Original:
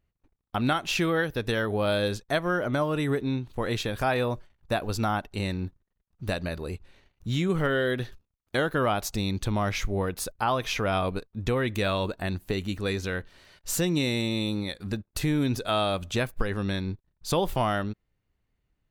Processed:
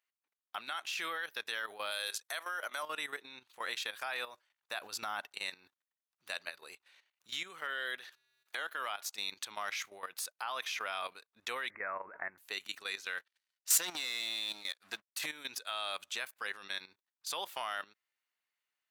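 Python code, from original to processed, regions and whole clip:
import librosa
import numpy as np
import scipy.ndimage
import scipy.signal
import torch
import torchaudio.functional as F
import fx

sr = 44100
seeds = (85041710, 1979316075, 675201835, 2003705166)

y = fx.chain(x, sr, fx.highpass(hz=380.0, slope=12),
    fx.peak_eq(hz=11000.0, db=9.5, octaves=1.3), at=(1.91, 2.83))
y = fx.chain(y, sr, fx.low_shelf(hz=260.0, db=11.0),
    fx.transient(attack_db=2, sustain_db=6), at=(4.8, 5.33))
y = fx.chain(y, sr, fx.low_shelf(hz=120.0, db=-7.0),
    fx.comb_fb(f0_hz=130.0, decay_s=1.1, harmonics='odd', damping=0.0, mix_pct=40),
    fx.band_squash(depth_pct=70), at=(8.0, 9.06))
y = fx.chain(y, sr, fx.steep_lowpass(hz=2200.0, slope=96),
    fx.low_shelf(hz=210.0, db=6.5),
    fx.pre_swell(db_per_s=24.0), at=(11.7, 12.38))
y = fx.chain(y, sr, fx.leveller(passes=3),
    fx.upward_expand(threshold_db=-34.0, expansion=2.5), at=(13.18, 15.26))
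y = scipy.signal.sosfilt(scipy.signal.butter(2, 1300.0, 'highpass', fs=sr, output='sos'), y)
y = fx.level_steps(y, sr, step_db=13)
y = y * 10.0 ** (1.0 / 20.0)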